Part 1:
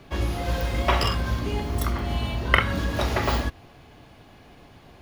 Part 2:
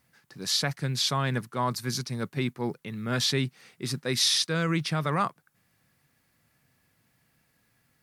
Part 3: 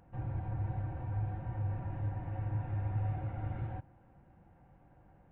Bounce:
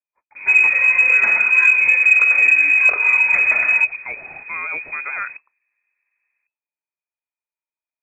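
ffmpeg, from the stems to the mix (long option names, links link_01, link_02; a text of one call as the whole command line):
ffmpeg -i stem1.wav -i stem2.wav -i stem3.wav -filter_complex "[0:a]alimiter=limit=-18dB:level=0:latency=1:release=195,equalizer=frequency=85:width_type=o:width=1.3:gain=14,adelay=350,volume=0.5dB[link_01];[1:a]agate=range=-29dB:threshold=-58dB:ratio=16:detection=peak,acontrast=38,volume=-10.5dB[link_02];[2:a]adelay=1150,volume=-17.5dB[link_03];[link_01][link_02][link_03]amix=inputs=3:normalize=0,lowpass=frequency=2200:width_type=q:width=0.5098,lowpass=frequency=2200:width_type=q:width=0.6013,lowpass=frequency=2200:width_type=q:width=0.9,lowpass=frequency=2200:width_type=q:width=2.563,afreqshift=-2600,acontrast=22" out.wav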